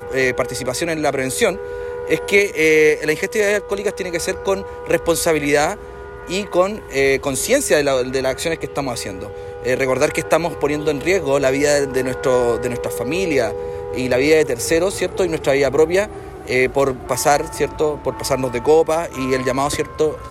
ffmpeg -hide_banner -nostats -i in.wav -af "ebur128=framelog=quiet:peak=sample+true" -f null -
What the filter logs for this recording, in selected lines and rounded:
Integrated loudness:
  I:         -18.4 LUFS
  Threshold: -28.5 LUFS
Loudness range:
  LRA:         2.1 LU
  Threshold: -38.4 LUFS
  LRA low:   -19.6 LUFS
  LRA high:  -17.4 LUFS
Sample peak:
  Peak:       -2.0 dBFS
True peak:
  Peak:       -2.0 dBFS